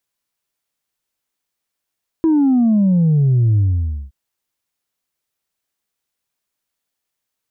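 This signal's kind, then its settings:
bass drop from 330 Hz, over 1.87 s, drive 1 dB, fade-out 0.53 s, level −11 dB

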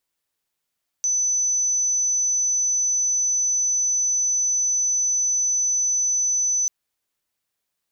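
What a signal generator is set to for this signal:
tone sine 6,020 Hz −18.5 dBFS 5.64 s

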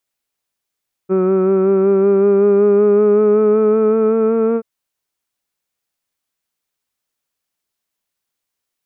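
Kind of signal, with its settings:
vowel from formants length 3.53 s, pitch 186 Hz, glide +3.5 semitones, vibrato depth 0.3 semitones, F1 410 Hz, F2 1,300 Hz, F3 2,400 Hz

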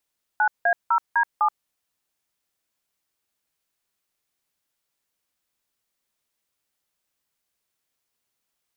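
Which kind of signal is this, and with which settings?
touch tones "9A0D7", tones 78 ms, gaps 174 ms, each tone −19 dBFS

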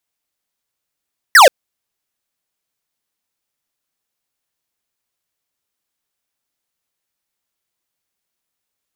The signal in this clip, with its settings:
single falling chirp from 2,000 Hz, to 480 Hz, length 0.13 s square, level −5 dB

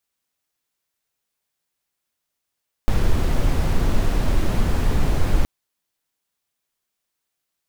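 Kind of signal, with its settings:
noise brown, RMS −16.5 dBFS 2.57 s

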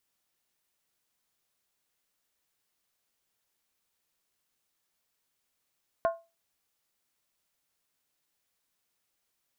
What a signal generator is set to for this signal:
struck skin, lowest mode 668 Hz, decay 0.27 s, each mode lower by 7 dB, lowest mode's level −20 dB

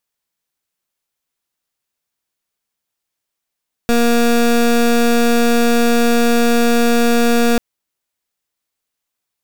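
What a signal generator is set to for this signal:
pulse wave 236 Hz, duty 23% −12.5 dBFS 3.69 s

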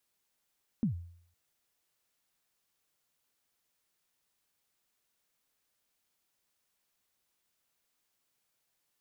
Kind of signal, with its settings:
synth kick length 0.51 s, from 250 Hz, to 86 Hz, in 111 ms, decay 0.61 s, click off, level −23.5 dB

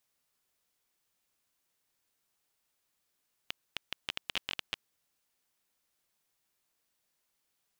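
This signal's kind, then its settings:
Geiger counter clicks 11 per second −15.5 dBFS 1.52 s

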